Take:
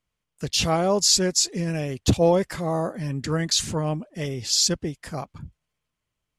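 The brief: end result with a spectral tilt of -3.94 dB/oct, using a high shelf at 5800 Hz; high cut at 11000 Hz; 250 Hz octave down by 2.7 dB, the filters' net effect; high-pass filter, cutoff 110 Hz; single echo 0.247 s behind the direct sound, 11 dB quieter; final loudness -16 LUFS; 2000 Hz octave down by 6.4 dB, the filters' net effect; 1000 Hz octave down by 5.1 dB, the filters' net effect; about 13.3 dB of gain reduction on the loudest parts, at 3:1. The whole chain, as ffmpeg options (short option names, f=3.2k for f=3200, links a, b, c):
-af "highpass=110,lowpass=11k,equalizer=f=250:t=o:g=-3.5,equalizer=f=1k:t=o:g=-5.5,equalizer=f=2k:t=o:g=-6.5,highshelf=f=5.8k:g=-3.5,acompressor=threshold=-35dB:ratio=3,aecho=1:1:247:0.282,volume=19.5dB"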